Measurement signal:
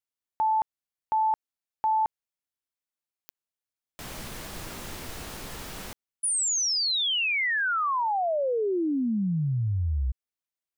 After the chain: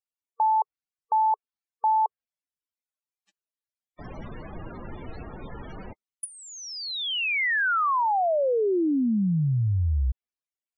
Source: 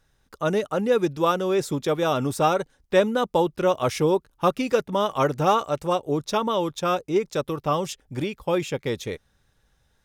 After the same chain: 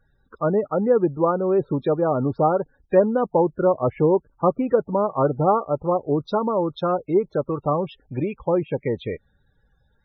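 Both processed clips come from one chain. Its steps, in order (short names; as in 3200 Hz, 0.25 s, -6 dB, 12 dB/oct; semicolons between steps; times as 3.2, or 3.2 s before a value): treble ducked by the level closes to 1000 Hz, closed at -20.5 dBFS; loudest bins only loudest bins 32; gain +3 dB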